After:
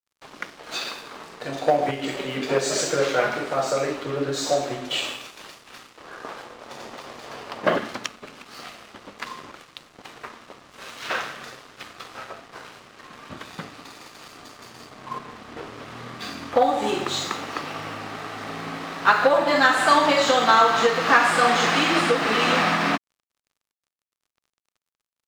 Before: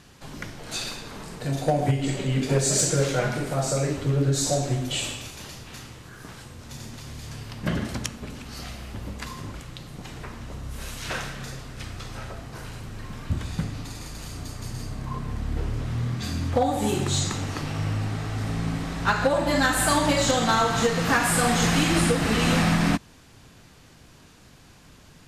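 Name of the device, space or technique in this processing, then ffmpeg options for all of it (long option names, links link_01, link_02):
pocket radio on a weak battery: -filter_complex "[0:a]asplit=3[link_01][link_02][link_03];[link_01]afade=type=out:start_time=5.97:duration=0.02[link_04];[link_02]equalizer=frequency=610:width_type=o:width=2:gain=10.5,afade=type=in:start_time=5.97:duration=0.02,afade=type=out:start_time=7.77:duration=0.02[link_05];[link_03]afade=type=in:start_time=7.77:duration=0.02[link_06];[link_04][link_05][link_06]amix=inputs=3:normalize=0,highpass=380,lowpass=4300,aeval=exprs='sgn(val(0))*max(abs(val(0))-0.00398,0)':channel_layout=same,equalizer=frequency=1200:width_type=o:width=0.29:gain=4.5,volume=5.5dB"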